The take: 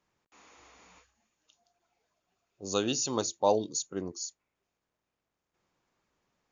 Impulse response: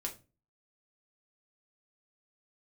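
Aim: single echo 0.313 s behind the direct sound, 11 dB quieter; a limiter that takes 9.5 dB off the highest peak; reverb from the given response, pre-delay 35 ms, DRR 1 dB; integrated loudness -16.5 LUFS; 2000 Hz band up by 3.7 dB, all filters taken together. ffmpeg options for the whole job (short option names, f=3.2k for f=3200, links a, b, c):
-filter_complex "[0:a]equalizer=f=2k:t=o:g=6,alimiter=limit=-20dB:level=0:latency=1,aecho=1:1:313:0.282,asplit=2[a][b];[1:a]atrim=start_sample=2205,adelay=35[c];[b][c]afir=irnorm=-1:irlink=0,volume=-1dB[d];[a][d]amix=inputs=2:normalize=0,volume=14dB"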